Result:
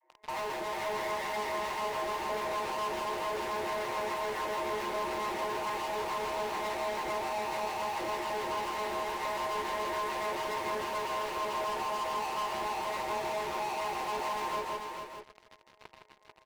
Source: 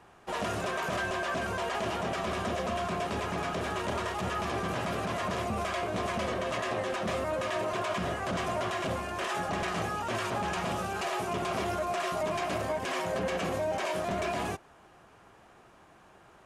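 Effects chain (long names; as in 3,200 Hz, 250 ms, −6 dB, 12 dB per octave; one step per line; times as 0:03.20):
vocoder with an arpeggio as carrier bare fifth, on C#3, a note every 120 ms
rotating-speaker cabinet horn 7 Hz
frequency shifter +220 Hz
pair of resonant band-passes 1,400 Hz, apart 1 octave
spectral tilt −3 dB per octave
convolution reverb RT60 0.20 s, pre-delay 3 ms, DRR −3 dB
in parallel at −12 dB: fuzz pedal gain 56 dB, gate −60 dBFS
on the sum: single-tap delay 163 ms −6.5 dB
downward compressor 2.5 to 1, threshold −37 dBFS, peak gain reduction 10 dB
single-tap delay 441 ms −5 dB
level −2 dB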